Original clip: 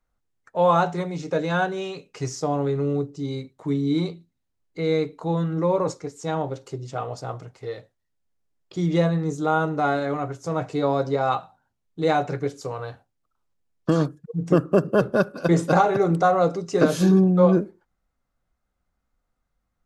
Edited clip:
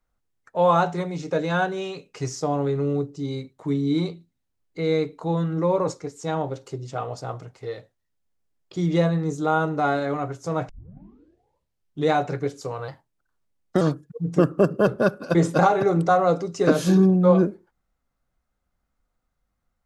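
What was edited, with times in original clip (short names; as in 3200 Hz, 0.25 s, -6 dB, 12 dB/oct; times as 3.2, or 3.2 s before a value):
10.69 tape start 1.43 s
12.88–13.95 speed 115%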